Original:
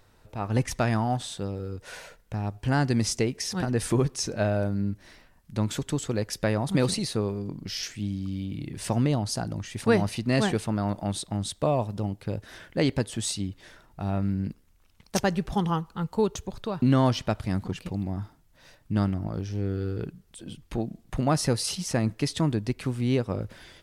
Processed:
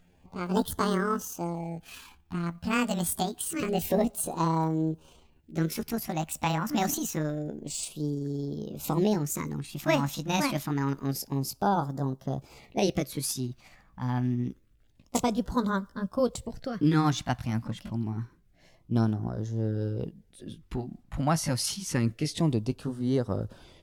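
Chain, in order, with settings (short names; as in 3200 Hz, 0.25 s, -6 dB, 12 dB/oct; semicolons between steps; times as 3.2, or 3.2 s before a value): gliding pitch shift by +10 st ending unshifted; LFO notch sine 0.27 Hz 390–2500 Hz; mismatched tape noise reduction decoder only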